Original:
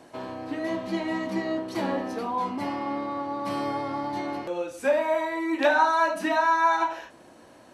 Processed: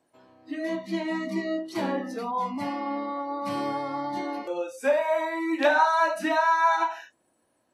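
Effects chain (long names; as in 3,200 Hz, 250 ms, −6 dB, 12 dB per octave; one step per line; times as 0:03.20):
noise reduction from a noise print of the clip's start 20 dB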